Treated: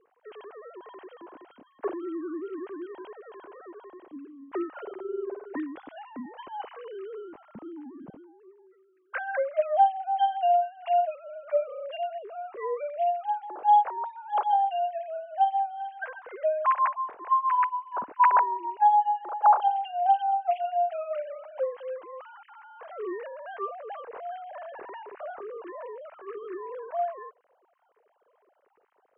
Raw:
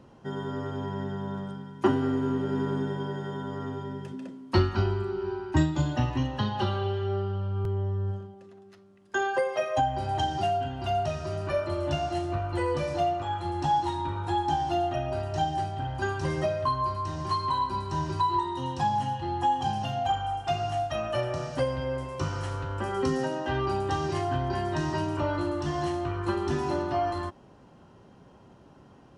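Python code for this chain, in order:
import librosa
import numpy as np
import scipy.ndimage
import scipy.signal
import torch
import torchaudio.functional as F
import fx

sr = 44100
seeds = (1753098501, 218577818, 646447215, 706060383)

y = fx.sine_speech(x, sr)
y = scipy.signal.sosfilt(scipy.signal.butter(2, 1900.0, 'lowpass', fs=sr, output='sos'), y)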